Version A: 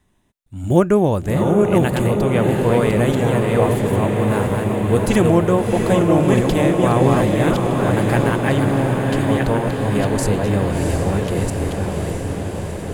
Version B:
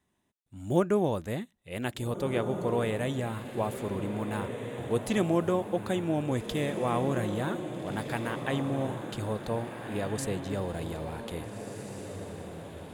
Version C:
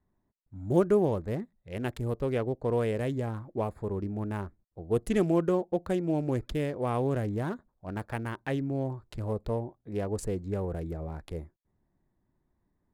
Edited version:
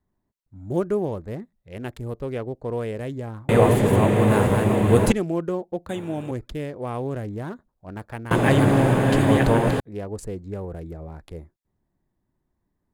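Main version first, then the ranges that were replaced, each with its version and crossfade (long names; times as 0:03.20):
C
0:03.49–0:05.12: punch in from A
0:05.89–0:06.31: punch in from B
0:08.31–0:09.80: punch in from A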